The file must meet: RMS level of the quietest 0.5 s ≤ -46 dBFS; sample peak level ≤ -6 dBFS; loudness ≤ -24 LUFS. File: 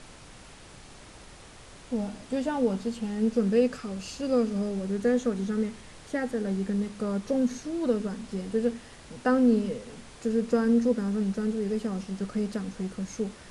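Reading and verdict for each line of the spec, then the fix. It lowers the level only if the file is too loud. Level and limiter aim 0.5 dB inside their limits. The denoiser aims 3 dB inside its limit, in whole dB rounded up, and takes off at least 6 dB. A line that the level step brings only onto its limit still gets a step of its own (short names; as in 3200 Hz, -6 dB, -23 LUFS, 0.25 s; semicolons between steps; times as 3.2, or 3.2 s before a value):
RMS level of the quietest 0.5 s -49 dBFS: OK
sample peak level -12.5 dBFS: OK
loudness -28.5 LUFS: OK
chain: none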